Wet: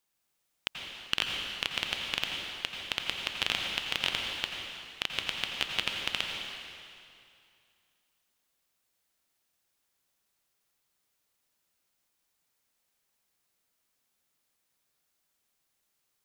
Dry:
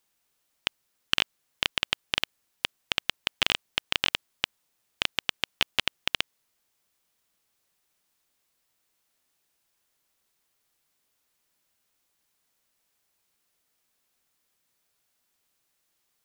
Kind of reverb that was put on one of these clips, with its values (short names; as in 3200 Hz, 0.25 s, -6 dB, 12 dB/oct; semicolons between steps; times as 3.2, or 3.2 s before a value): plate-style reverb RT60 2.4 s, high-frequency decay 0.95×, pre-delay 75 ms, DRR 1 dB; gain -5.5 dB